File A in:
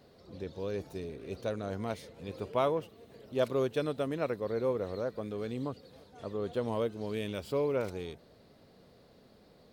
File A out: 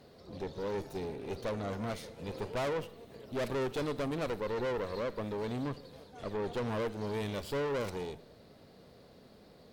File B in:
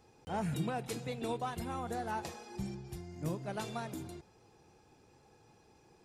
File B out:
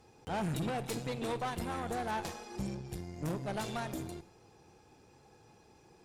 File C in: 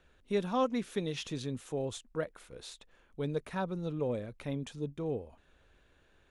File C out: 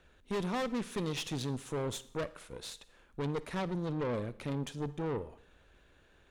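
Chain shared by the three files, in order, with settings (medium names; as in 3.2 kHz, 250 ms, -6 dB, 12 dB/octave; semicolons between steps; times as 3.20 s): valve stage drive 38 dB, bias 0.75; Schroeder reverb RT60 0.67 s, DRR 16.5 dB; trim +7 dB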